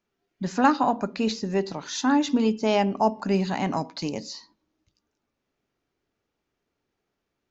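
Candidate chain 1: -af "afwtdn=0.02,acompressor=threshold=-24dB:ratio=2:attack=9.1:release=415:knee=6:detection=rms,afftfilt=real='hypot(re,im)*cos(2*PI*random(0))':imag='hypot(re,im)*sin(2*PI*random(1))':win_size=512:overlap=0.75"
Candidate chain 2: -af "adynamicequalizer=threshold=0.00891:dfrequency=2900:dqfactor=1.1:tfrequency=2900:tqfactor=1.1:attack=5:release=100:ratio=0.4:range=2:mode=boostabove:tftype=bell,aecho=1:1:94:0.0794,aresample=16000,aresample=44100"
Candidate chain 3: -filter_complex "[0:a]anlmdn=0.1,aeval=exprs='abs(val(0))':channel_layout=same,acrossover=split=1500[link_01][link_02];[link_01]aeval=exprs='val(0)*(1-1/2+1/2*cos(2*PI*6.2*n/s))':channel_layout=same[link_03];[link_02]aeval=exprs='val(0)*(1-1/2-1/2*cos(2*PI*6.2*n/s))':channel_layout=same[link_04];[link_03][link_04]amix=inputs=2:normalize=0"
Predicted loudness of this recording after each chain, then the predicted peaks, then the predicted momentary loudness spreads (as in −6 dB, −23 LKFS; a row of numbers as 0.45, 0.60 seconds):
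−35.5, −24.5, −34.5 LKFS; −18.5, −6.0, −9.5 dBFS; 7, 10, 10 LU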